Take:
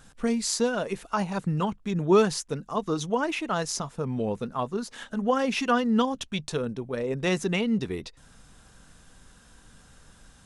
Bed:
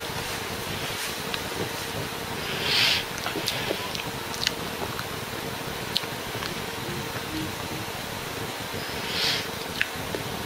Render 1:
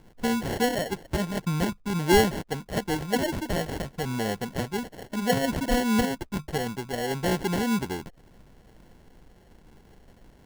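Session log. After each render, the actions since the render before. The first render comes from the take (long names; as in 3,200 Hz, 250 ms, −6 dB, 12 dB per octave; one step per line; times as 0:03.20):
decimation without filtering 36×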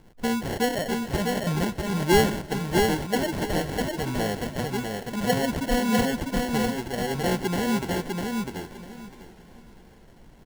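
on a send: repeating echo 650 ms, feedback 20%, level −3.5 dB
on the sum: feedback echo with a swinging delay time 405 ms, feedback 58%, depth 61 cents, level −19 dB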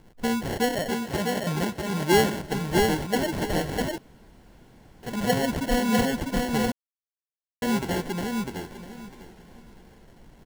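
0:00.90–0:02.40: high-pass filter 130 Hz 6 dB per octave
0:03.98–0:05.03: fill with room tone
0:06.72–0:07.62: silence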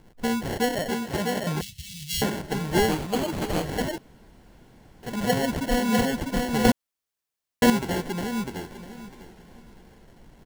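0:01.61–0:02.22: inverse Chebyshev band-stop filter 270–1,300 Hz, stop band 50 dB
0:02.91–0:03.65: gap after every zero crossing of 0.27 ms
0:06.65–0:07.70: clip gain +9.5 dB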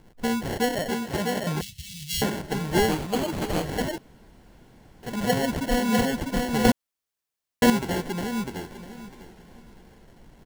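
no processing that can be heard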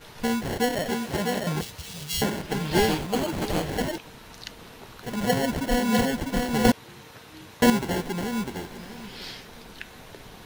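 mix in bed −14.5 dB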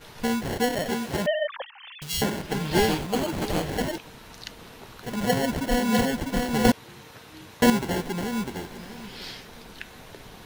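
0:01.26–0:02.02: three sine waves on the formant tracks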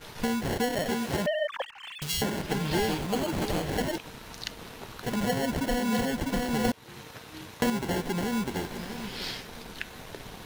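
leveller curve on the samples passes 1
downward compressor 3 to 1, threshold −27 dBFS, peak gain reduction 11 dB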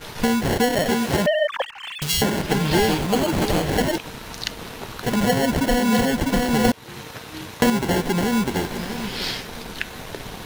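level +8.5 dB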